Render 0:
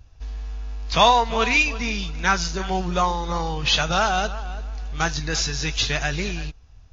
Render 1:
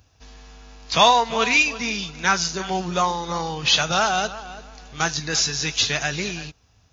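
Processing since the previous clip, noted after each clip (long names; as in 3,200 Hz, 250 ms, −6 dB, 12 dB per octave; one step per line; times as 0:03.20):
high-pass filter 120 Hz 12 dB per octave
high-shelf EQ 5,800 Hz +8.5 dB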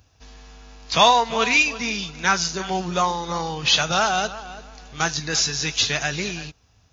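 no processing that can be heard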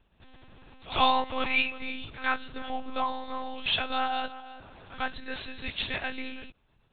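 echo ahead of the sound 96 ms −18 dB
one-pitch LPC vocoder at 8 kHz 260 Hz
level −8 dB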